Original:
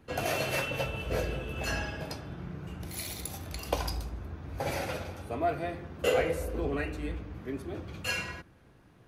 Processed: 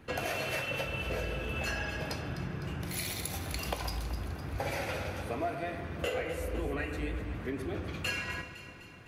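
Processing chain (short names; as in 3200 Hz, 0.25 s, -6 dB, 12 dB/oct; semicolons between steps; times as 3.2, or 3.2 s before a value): bell 2100 Hz +4.5 dB 1.5 oct; compressor 6:1, threshold -35 dBFS, peak gain reduction 13.5 dB; echo with dull and thin repeats by turns 0.127 s, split 1900 Hz, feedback 76%, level -9 dB; gain +3 dB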